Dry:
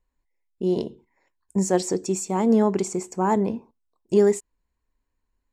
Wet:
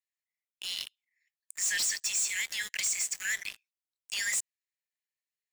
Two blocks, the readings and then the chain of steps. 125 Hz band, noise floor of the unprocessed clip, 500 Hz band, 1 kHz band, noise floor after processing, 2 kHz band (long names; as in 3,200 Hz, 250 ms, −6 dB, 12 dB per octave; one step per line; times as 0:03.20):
below −35 dB, −78 dBFS, below −35 dB, −28.0 dB, below −85 dBFS, +9.0 dB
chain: Butterworth high-pass 1,700 Hz 96 dB per octave
leveller curve on the samples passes 5
brickwall limiter −29.5 dBFS, peak gain reduction 10 dB
level +3.5 dB